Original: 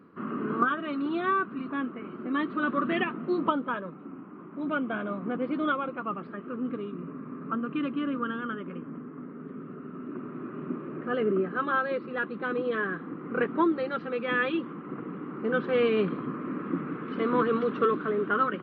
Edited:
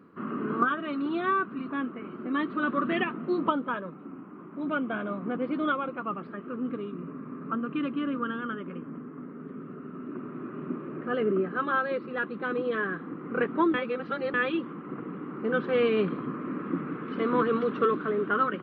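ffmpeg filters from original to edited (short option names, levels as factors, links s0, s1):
-filter_complex "[0:a]asplit=3[s0][s1][s2];[s0]atrim=end=13.742[s3];[s1]atrim=start=13.738:end=14.342,asetpts=PTS-STARTPTS,areverse[s4];[s2]atrim=start=14.338[s5];[s3][s4]acrossfade=d=0.004:c1=hsin:c2=hsin[s6];[s6][s5]acrossfade=d=0.004:c1=hsin:c2=hsin"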